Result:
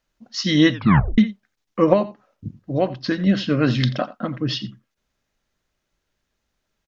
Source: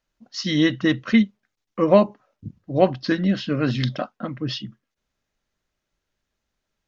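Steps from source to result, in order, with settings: 1.93–3.27 s: compression 2:1, threshold -25 dBFS, peak gain reduction 9 dB; delay 86 ms -17 dB; 0.73 s: tape stop 0.45 s; trim +3.5 dB

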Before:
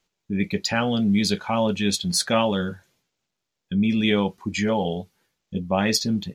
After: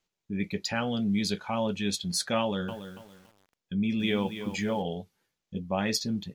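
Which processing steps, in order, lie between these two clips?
2.40–4.82 s: bit-crushed delay 282 ms, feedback 35%, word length 7-bit, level -10 dB; trim -7 dB

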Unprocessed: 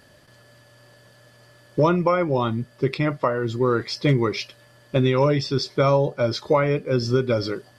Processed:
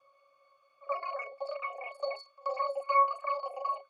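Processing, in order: time reversed locally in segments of 54 ms; Chebyshev high-pass 210 Hz, order 8; in parallel at 0 dB: compression, threshold -29 dBFS, peak gain reduction 13.5 dB; on the sum: crackle 150 per s -52 dBFS; pitch-class resonator C#, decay 0.33 s; pre-echo 164 ms -23 dB; speed mistake 7.5 ips tape played at 15 ips

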